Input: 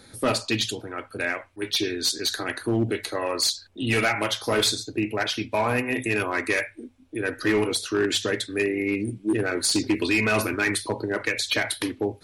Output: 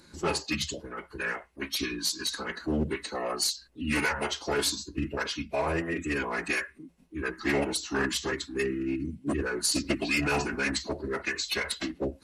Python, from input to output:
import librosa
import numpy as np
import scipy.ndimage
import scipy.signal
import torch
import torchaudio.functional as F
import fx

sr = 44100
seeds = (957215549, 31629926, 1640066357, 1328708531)

y = fx.high_shelf(x, sr, hz=9300.0, db=7.5)
y = fx.notch(y, sr, hz=3500.0, q=8.9)
y = fx.pitch_keep_formants(y, sr, semitones=-7.0)
y = y * 10.0 ** (-4.5 / 20.0)